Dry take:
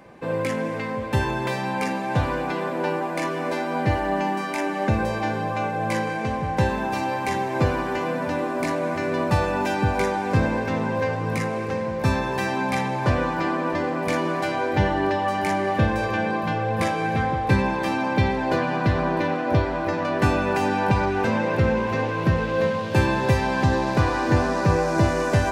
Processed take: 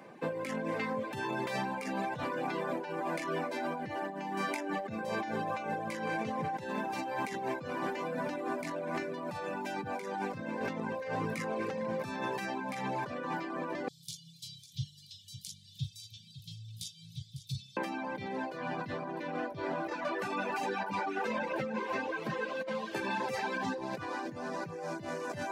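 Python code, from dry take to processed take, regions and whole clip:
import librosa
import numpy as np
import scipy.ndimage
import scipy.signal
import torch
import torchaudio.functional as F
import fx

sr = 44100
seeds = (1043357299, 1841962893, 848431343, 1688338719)

y = fx.chain(x, sr, fx.cheby1_bandstop(low_hz=140.0, high_hz=3400.0, order=5),
    fx.echo_single(ms=551, db=-13.0), at=(13.88, 17.77))
y = fx.chain(y, sr, fx.highpass(hz=340.0, slope=6),
    fx.ensemble(), at=(19.9, 23.78))
y = scipy.signal.sosfilt(scipy.signal.butter(4, 150.0, 'highpass', fs=sr, output='sos'), y)
y = fx.over_compress(y, sr, threshold_db=-28.0, ratio=-1.0)
y = fx.dereverb_blind(y, sr, rt60_s=0.87)
y = y * librosa.db_to_amplitude(-6.0)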